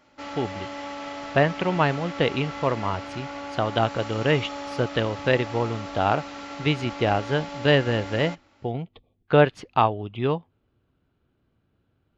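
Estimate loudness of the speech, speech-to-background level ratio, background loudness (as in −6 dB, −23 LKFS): −25.0 LKFS, 10.5 dB, −35.5 LKFS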